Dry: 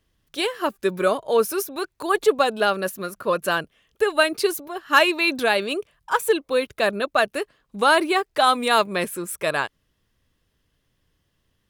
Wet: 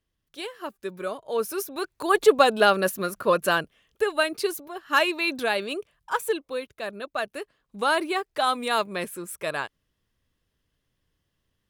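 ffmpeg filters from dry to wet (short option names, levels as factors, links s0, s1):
-af "volume=2.82,afade=t=in:st=1.2:d=1.22:silence=0.223872,afade=t=out:st=3.12:d=1.07:silence=0.446684,afade=t=out:st=6.18:d=0.57:silence=0.398107,afade=t=in:st=6.75:d=1.1:silence=0.446684"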